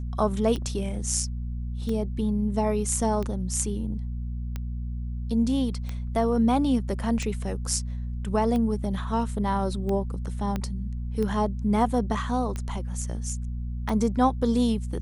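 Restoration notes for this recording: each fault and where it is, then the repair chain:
hum 60 Hz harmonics 4 -31 dBFS
tick 45 rpm -19 dBFS
10.56 pop -16 dBFS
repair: de-click; de-hum 60 Hz, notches 4

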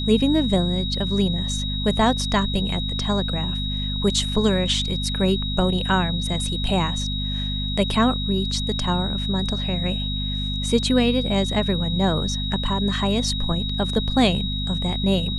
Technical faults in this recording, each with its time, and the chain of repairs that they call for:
hum 50 Hz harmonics 5 -27 dBFS
tone 3800 Hz -28 dBFS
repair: notch 3800 Hz, Q 30; de-hum 50 Hz, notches 5

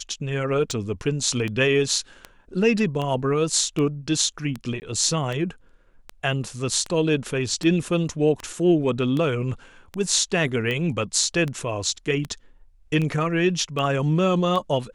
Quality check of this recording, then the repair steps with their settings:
tick 78 rpm -16 dBFS
4.8–4.82 gap 19 ms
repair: de-click; interpolate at 4.8, 19 ms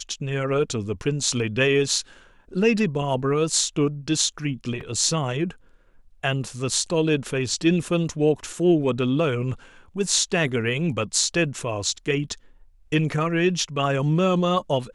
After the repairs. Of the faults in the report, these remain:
none

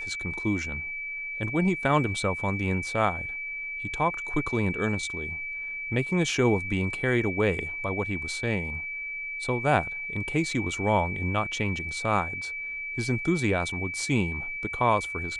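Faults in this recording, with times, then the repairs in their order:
tone 2300 Hz -32 dBFS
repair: notch 2300 Hz, Q 30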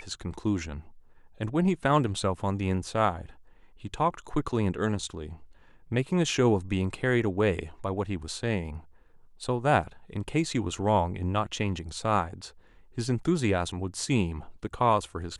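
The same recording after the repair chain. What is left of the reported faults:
none

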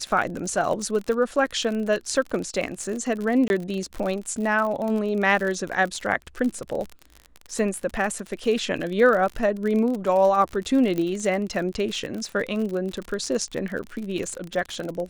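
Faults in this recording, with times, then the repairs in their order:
crackle 52/s -28 dBFS
3.48–3.5 gap 21 ms
10.98 pop -15 dBFS
13.83–13.84 gap 6 ms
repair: de-click; interpolate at 3.48, 21 ms; interpolate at 13.83, 6 ms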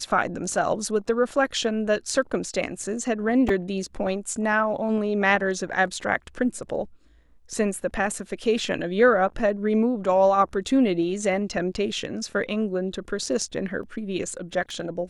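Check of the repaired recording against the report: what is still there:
none

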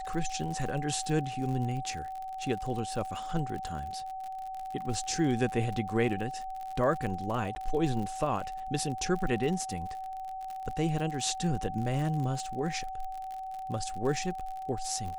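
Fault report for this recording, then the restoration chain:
crackle 51/s -36 dBFS
tone 760 Hz -36 dBFS
7.55–7.56 gap 10 ms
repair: de-click; notch 760 Hz, Q 30; interpolate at 7.55, 10 ms

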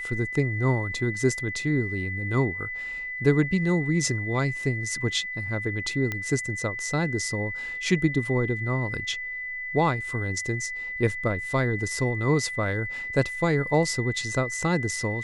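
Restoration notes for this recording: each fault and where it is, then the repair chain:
tone 2000 Hz -31 dBFS
6.12 pop -15 dBFS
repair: de-click; notch 2000 Hz, Q 30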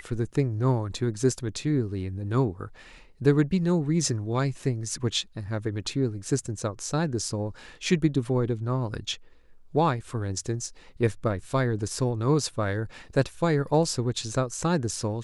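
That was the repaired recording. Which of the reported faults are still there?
6.12 pop

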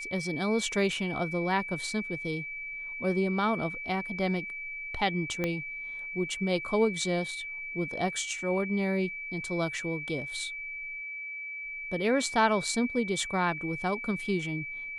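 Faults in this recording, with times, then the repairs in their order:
tone 2300 Hz -36 dBFS
5.44 pop -16 dBFS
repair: de-click; notch 2300 Hz, Q 30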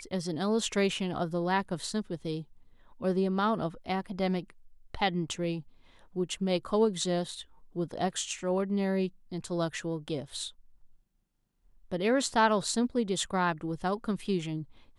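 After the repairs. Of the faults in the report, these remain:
5.44 pop

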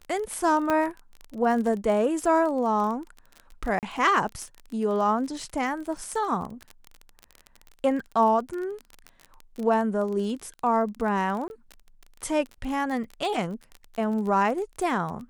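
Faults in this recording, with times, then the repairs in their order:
crackle 28/s -31 dBFS
0.7 pop -12 dBFS
3.79–3.83 gap 38 ms
11.48–11.5 gap 21 ms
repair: de-click; interpolate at 3.79, 38 ms; interpolate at 11.48, 21 ms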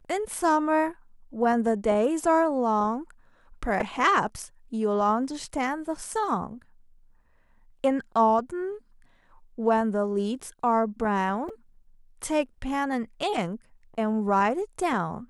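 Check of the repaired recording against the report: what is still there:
none

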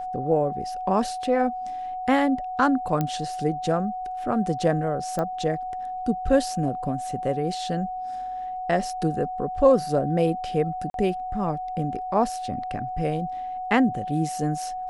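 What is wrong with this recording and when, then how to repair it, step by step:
tone 740 Hz -29 dBFS
3.01 pop -12 dBFS
5.19 pop -16 dBFS
10.9–10.94 gap 42 ms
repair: de-click; notch 740 Hz, Q 30; interpolate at 10.9, 42 ms

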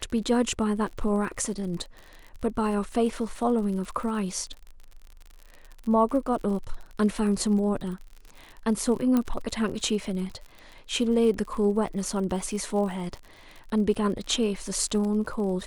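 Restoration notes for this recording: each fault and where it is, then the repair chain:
crackle 54/s -35 dBFS
9.17 pop -13 dBFS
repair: de-click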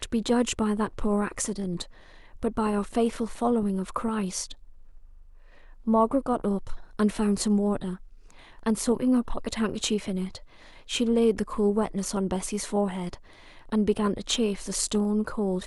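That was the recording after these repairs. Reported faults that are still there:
9.17 pop

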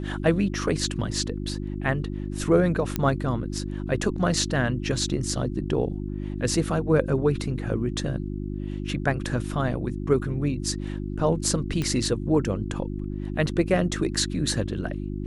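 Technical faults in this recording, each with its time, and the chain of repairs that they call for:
hum 50 Hz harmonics 7 -31 dBFS
2.96 pop -10 dBFS
11.82 pop -15 dBFS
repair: de-click; de-hum 50 Hz, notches 7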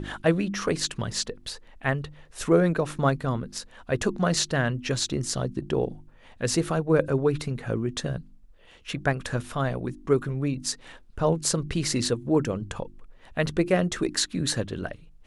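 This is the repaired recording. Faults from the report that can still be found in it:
none

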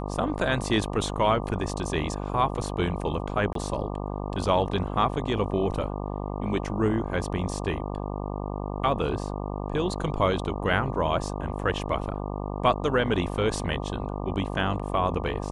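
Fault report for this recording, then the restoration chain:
buzz 50 Hz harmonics 24 -32 dBFS
3.53–3.55 gap 23 ms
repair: de-hum 50 Hz, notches 24; interpolate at 3.53, 23 ms

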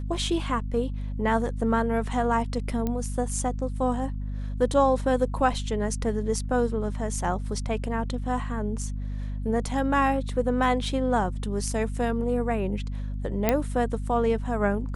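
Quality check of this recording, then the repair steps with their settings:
hum 50 Hz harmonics 5 -31 dBFS
2.87 pop -16 dBFS
13.49 pop -7 dBFS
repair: de-click; de-hum 50 Hz, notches 5

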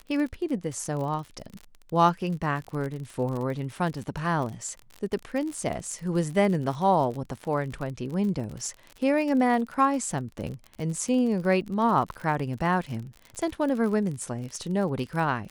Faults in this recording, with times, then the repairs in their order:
crackle 45/s -32 dBFS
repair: de-click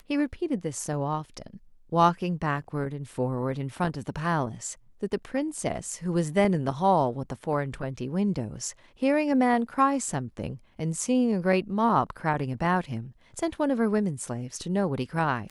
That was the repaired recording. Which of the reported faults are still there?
none

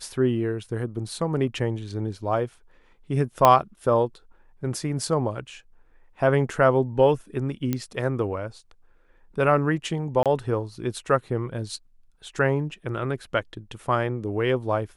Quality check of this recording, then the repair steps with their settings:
3.45 pop -3 dBFS
7.73 pop -12 dBFS
10.23–10.26 gap 27 ms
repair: de-click; interpolate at 10.23, 27 ms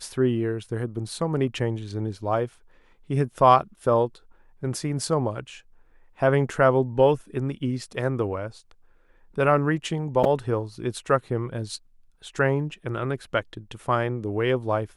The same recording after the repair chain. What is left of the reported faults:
3.45 pop

